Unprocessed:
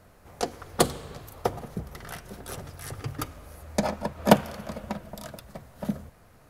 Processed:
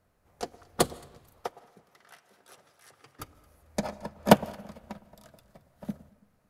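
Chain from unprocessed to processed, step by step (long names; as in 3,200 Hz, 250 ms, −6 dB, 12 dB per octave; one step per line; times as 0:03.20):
0:01.41–0:03.20: meter weighting curve A
delay that swaps between a low-pass and a high-pass 111 ms, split 1,000 Hz, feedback 53%, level −13 dB
on a send at −16.5 dB: convolution reverb RT60 0.70 s, pre-delay 115 ms
on the sum: expander for the loud parts 1.5 to 1, over −42 dBFS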